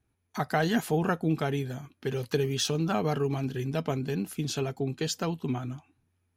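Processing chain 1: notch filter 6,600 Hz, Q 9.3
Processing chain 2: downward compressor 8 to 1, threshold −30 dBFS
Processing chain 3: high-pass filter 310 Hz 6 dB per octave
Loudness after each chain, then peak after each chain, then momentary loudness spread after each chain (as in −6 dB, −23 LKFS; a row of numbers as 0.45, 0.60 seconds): −30.0, −35.5, −32.5 LKFS; −13.0, −17.5, −13.0 dBFS; 8, 5, 9 LU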